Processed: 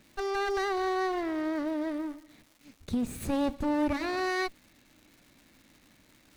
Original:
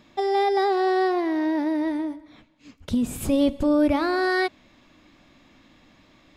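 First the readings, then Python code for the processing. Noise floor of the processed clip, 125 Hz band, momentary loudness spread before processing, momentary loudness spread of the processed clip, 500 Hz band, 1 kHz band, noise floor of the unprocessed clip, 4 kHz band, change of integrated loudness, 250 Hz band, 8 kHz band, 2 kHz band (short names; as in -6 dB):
-63 dBFS, -6.0 dB, 7 LU, 6 LU, -8.5 dB, -8.0 dB, -58 dBFS, -6.0 dB, -8.0 dB, -8.0 dB, -5.0 dB, -5.5 dB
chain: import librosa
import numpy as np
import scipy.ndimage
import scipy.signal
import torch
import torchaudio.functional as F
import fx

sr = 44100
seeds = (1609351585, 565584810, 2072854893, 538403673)

y = fx.lower_of_two(x, sr, delay_ms=0.48)
y = fx.dmg_crackle(y, sr, seeds[0], per_s=480.0, level_db=-43.0)
y = y * 10.0 ** (-6.0 / 20.0)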